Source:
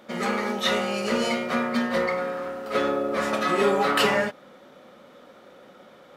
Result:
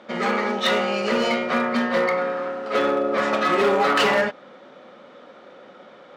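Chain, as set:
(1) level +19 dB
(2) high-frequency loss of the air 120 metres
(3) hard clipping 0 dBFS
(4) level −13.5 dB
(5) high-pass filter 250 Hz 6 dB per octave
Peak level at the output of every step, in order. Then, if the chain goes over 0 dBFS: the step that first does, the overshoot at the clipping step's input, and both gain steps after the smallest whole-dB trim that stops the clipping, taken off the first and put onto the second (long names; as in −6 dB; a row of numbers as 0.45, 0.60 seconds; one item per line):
+10.0, +9.0, 0.0, −13.5, −9.5 dBFS
step 1, 9.0 dB
step 1 +10 dB, step 4 −4.5 dB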